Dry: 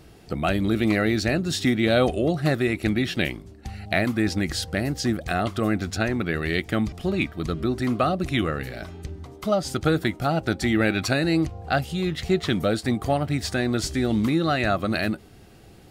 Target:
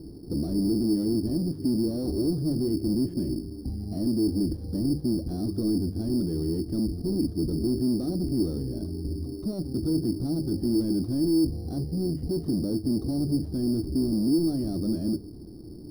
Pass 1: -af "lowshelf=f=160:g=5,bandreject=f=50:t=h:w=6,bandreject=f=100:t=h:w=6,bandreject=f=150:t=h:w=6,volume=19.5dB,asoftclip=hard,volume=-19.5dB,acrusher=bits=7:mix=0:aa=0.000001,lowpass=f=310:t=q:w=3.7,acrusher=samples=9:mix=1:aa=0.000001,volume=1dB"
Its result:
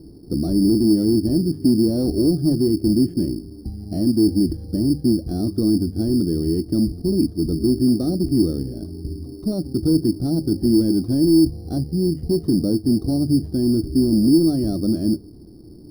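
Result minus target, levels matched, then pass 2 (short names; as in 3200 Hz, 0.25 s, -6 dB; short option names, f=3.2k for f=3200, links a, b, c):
overloaded stage: distortion -7 dB
-af "lowshelf=f=160:g=5,bandreject=f=50:t=h:w=6,bandreject=f=100:t=h:w=6,bandreject=f=150:t=h:w=6,volume=29.5dB,asoftclip=hard,volume=-29.5dB,acrusher=bits=7:mix=0:aa=0.000001,lowpass=f=310:t=q:w=3.7,acrusher=samples=9:mix=1:aa=0.000001,volume=1dB"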